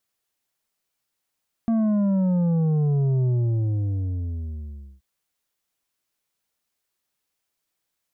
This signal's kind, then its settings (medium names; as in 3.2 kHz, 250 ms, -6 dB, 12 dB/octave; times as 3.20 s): sub drop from 230 Hz, over 3.33 s, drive 7 dB, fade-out 1.75 s, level -19 dB